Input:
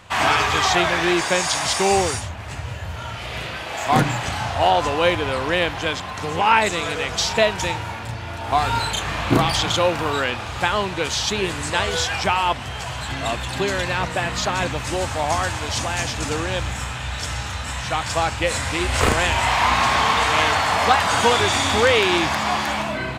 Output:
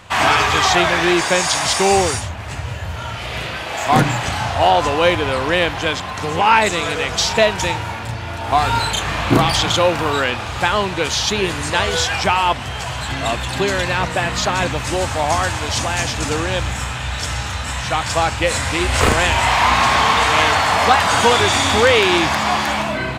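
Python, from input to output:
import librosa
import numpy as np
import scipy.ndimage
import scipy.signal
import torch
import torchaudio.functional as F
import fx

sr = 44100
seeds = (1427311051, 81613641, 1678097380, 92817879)

y = fx.notch(x, sr, hz=7900.0, q=12.0, at=(11.1, 11.9))
y = 10.0 ** (-4.0 / 20.0) * np.tanh(y / 10.0 ** (-4.0 / 20.0))
y = F.gain(torch.from_numpy(y), 4.0).numpy()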